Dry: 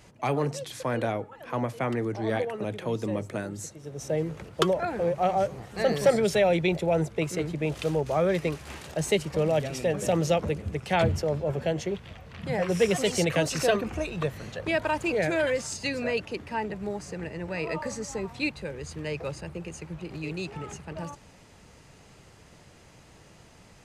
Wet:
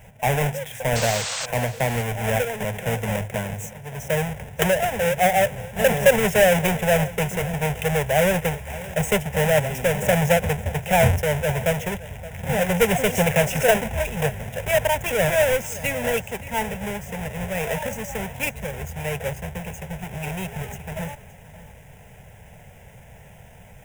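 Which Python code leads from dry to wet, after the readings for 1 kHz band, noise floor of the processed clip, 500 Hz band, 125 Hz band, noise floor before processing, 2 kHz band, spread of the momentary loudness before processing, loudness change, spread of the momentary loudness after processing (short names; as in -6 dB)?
+6.5 dB, -46 dBFS, +5.0 dB, +7.0 dB, -54 dBFS, +9.0 dB, 12 LU, +6.0 dB, 13 LU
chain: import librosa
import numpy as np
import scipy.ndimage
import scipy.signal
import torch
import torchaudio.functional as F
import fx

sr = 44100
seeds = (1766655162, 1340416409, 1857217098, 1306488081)

y = fx.halfwave_hold(x, sr)
y = fx.fixed_phaser(y, sr, hz=1200.0, stages=6)
y = fx.spec_paint(y, sr, seeds[0], shape='noise', start_s=0.95, length_s=0.51, low_hz=470.0, high_hz=8600.0, level_db=-33.0)
y = y + 10.0 ** (-17.5 / 20.0) * np.pad(y, (int(572 * sr / 1000.0), 0))[:len(y)]
y = y * 10.0 ** (4.5 / 20.0)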